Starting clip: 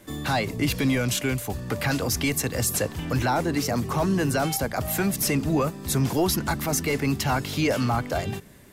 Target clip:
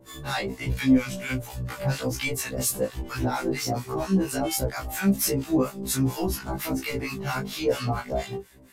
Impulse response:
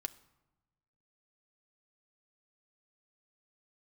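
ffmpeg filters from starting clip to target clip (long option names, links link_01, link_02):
-filter_complex "[0:a]acrossover=split=880[link_01][link_02];[link_01]aeval=exprs='val(0)*(1-1/2+1/2*cos(2*PI*4.3*n/s))':channel_layout=same[link_03];[link_02]aeval=exprs='val(0)*(1-1/2-1/2*cos(2*PI*4.3*n/s))':channel_layout=same[link_04];[link_03][link_04]amix=inputs=2:normalize=0,flanger=delay=17.5:depth=3.2:speed=1.3,afftfilt=real='re*1.73*eq(mod(b,3),0)':imag='im*1.73*eq(mod(b,3),0)':win_size=2048:overlap=0.75,volume=7dB"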